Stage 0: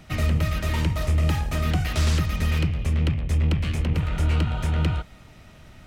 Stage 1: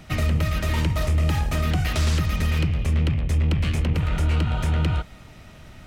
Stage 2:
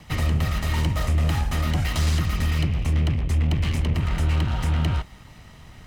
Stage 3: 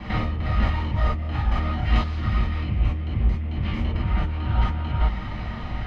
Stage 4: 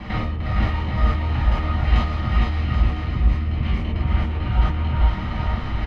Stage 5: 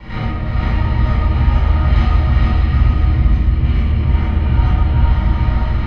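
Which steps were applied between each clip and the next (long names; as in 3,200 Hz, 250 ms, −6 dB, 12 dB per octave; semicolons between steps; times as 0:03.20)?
brickwall limiter −17.5 dBFS, peak gain reduction 3.5 dB; level +3 dB
lower of the sound and its delayed copy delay 1 ms
compressor whose output falls as the input rises −30 dBFS, ratio −1; high-frequency loss of the air 310 metres; reverb whose tail is shaped and stops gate 80 ms flat, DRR −7 dB
reversed playback; upward compression, threshold −21 dBFS; reversed playback; bouncing-ball delay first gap 460 ms, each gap 0.7×, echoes 5
rectangular room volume 1,500 cubic metres, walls mixed, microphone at 4.6 metres; level −5 dB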